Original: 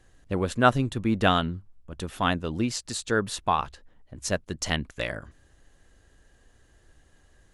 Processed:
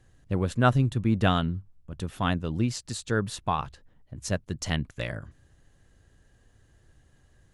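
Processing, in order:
parametric band 120 Hz +9.5 dB 1.5 octaves
level −4 dB

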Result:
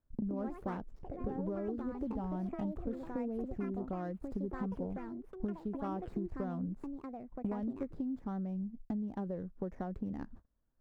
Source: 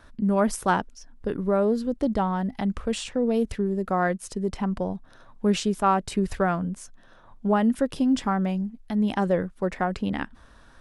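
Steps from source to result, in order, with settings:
running median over 15 samples
noise gate −44 dBFS, range −37 dB
tilt shelving filter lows +9 dB, about 880 Hz
downward compressor 16 to 1, threshold −37 dBFS, peak gain reduction 27.5 dB
delay with pitch and tempo change per echo 168 ms, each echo +5 semitones, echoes 2, each echo −6 dB
level +1.5 dB

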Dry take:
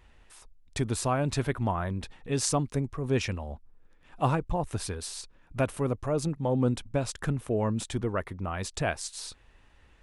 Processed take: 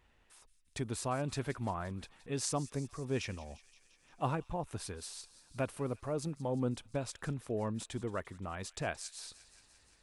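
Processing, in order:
low-shelf EQ 63 Hz −8.5 dB
on a send: delay with a high-pass on its return 174 ms, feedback 73%, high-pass 2,400 Hz, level −16 dB
on the sum: level −7.5 dB

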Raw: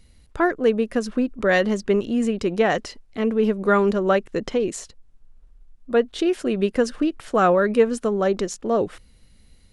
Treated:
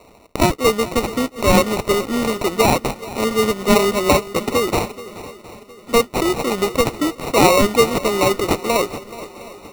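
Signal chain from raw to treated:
high-pass filter 650 Hz 6 dB per octave
high-shelf EQ 4,600 Hz +11.5 dB
in parallel at −2 dB: downward compressor, threshold −32 dBFS, peak gain reduction 16.5 dB
on the sum: noise that follows the level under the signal 16 dB
decimation without filtering 27×
on a send: feedback echo with a long and a short gap by turns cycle 713 ms, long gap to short 1.5 to 1, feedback 40%, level −17 dB
on the sum: level +6 dB

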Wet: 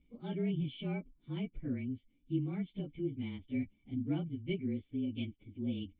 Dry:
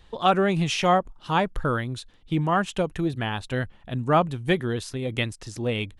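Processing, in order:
partials spread apart or drawn together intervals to 110%
formant resonators in series i

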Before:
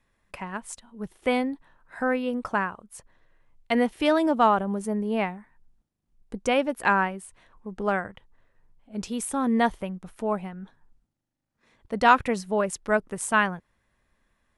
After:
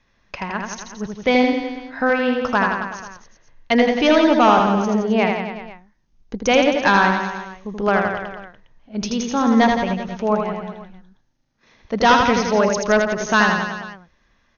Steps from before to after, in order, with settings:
high-shelf EQ 4,100 Hz +8.5 dB
hard clipping −15.5 dBFS, distortion −12 dB
linear-phase brick-wall low-pass 6,700 Hz
reverse bouncing-ball delay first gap 80 ms, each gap 1.1×, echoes 5
level +6.5 dB

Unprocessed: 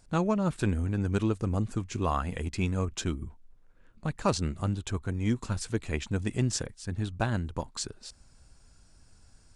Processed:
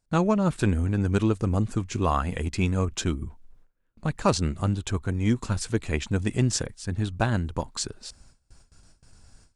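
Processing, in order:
noise gate with hold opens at −47 dBFS
level +4.5 dB

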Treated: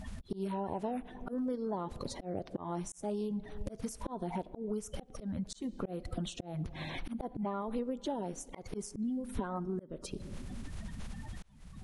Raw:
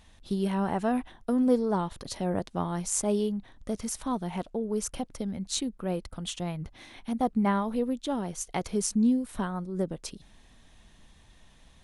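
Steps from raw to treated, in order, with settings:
spectral magnitudes quantised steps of 30 dB
high-shelf EQ 8,400 Hz +3.5 dB
on a send at −21.5 dB: convolution reverb RT60 1.5 s, pre-delay 5 ms
on the sum: volume swells 634 ms
downward compressor 10 to 1, threshold −47 dBFS, peak gain reduction 22.5 dB
high-shelf EQ 2,800 Hz −11.5 dB
level +14 dB

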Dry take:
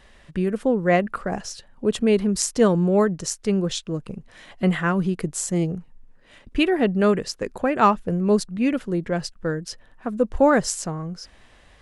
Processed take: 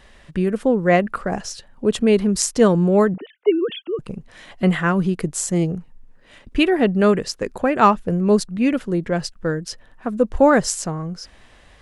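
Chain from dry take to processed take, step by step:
0:03.14–0:03.99: three sine waves on the formant tracks
level +3 dB

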